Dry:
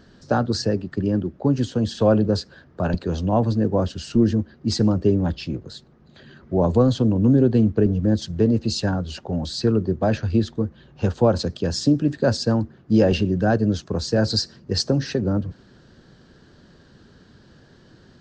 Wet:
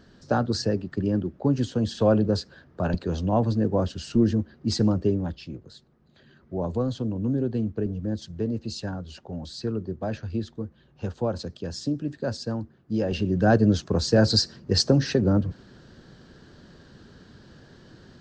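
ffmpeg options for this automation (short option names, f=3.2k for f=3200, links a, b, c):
-af "volume=7.5dB,afade=t=out:st=4.92:d=0.45:silence=0.473151,afade=t=in:st=13.08:d=0.47:silence=0.298538"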